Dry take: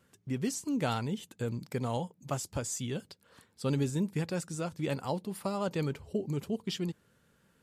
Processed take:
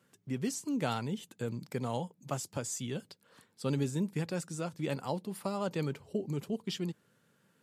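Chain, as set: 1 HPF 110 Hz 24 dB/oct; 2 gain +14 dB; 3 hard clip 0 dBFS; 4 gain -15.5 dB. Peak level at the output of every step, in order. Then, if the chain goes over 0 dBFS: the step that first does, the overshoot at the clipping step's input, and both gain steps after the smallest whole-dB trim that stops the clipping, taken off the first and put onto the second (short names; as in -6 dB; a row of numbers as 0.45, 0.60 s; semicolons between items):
-16.0, -2.0, -2.0, -17.5 dBFS; no overload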